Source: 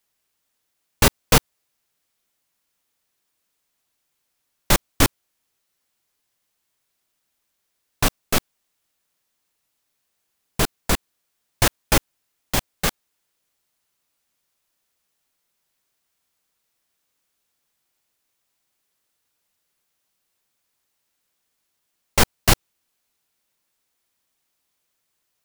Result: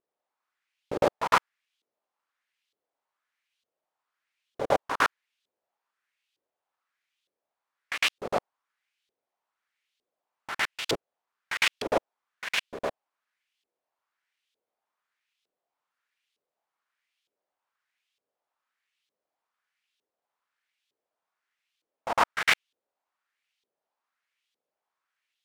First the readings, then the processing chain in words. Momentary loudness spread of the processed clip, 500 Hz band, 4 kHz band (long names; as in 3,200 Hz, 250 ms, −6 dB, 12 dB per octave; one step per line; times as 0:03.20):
11 LU, −2.5 dB, −6.5 dB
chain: backwards echo 107 ms −8 dB
full-wave rectification
auto-filter band-pass saw up 1.1 Hz 400–3,600 Hz
level +7 dB